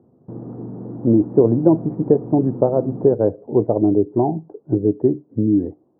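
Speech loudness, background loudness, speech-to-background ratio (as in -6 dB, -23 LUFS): -18.5 LUFS, -33.0 LUFS, 14.5 dB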